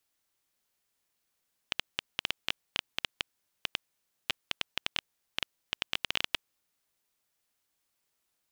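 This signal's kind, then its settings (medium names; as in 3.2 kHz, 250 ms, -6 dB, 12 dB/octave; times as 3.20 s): random clicks 7.9 per s -10 dBFS 4.71 s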